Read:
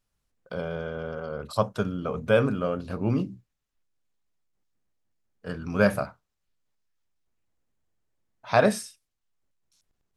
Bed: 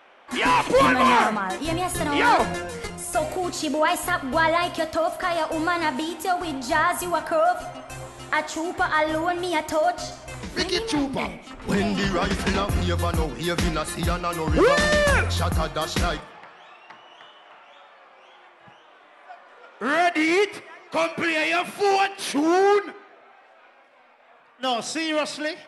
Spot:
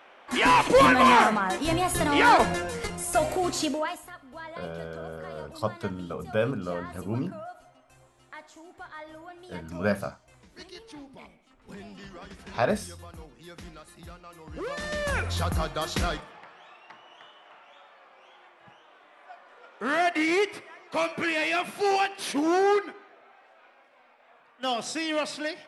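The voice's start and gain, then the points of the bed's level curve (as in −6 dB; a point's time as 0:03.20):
4.05 s, −5.0 dB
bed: 0:03.63 0 dB
0:04.11 −21 dB
0:14.45 −21 dB
0:15.40 −4 dB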